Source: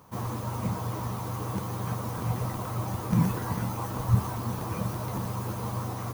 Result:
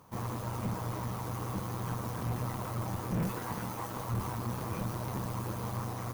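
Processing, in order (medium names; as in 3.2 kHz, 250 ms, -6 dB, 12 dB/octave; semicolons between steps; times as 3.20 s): 3.27–4.17 s: bass shelf 120 Hz -12 dB; valve stage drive 28 dB, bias 0.65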